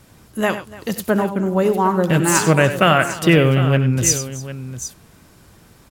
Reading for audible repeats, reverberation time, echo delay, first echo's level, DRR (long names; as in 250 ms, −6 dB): 4, no reverb audible, 65 ms, −19.5 dB, no reverb audible